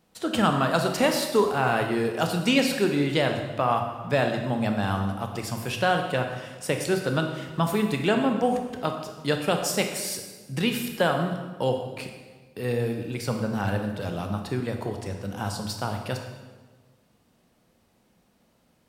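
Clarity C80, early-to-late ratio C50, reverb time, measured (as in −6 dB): 7.5 dB, 5.5 dB, 1.4 s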